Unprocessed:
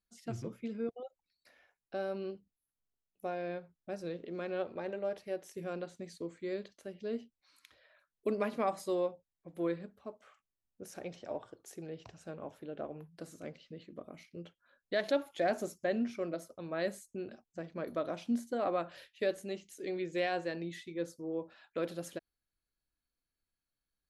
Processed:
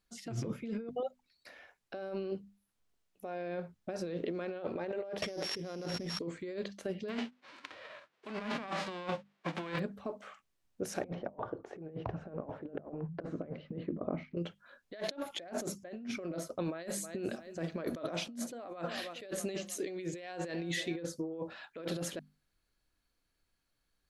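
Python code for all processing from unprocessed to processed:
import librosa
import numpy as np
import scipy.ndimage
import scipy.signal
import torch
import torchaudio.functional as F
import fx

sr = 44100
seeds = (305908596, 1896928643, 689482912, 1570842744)

y = fx.chain(x, sr, fx.sample_sort(block=8),
    fx.lowpass(hz=7500.0, slope=12),
    fx.env_flatten(amount_pct=70), at=(5.22, 6.19))
y = fx.envelope_flatten(y, sr, power=0.3, at=(7.08, 9.78), fade=0.02)
y = fx.bandpass_edges(y, sr, low_hz=200.0, high_hz=2700.0, at=(7.08, 9.78), fade=0.02)
y = fx.over_compress(y, sr, threshold_db=-47.0, ratio=-1.0, at=(7.08, 9.78), fade=0.02)
y = fx.chain(y, sr, fx.lowpass(hz=1200.0, slope=12),
    fx.over_compress(threshold_db=-50.0, ratio=-0.5), at=(11.04, 14.37))
y = fx.chain(y, sr, fx.high_shelf(hz=4100.0, db=6.5),
    fx.echo_feedback(ms=317, feedback_pct=46, wet_db=-23.5), at=(16.65, 21.0))
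y = fx.hum_notches(y, sr, base_hz=50, count=5)
y = fx.over_compress(y, sr, threshold_db=-44.0, ratio=-1.0)
y = fx.high_shelf(y, sr, hz=9900.0, db=-10.5)
y = y * librosa.db_to_amplitude(5.5)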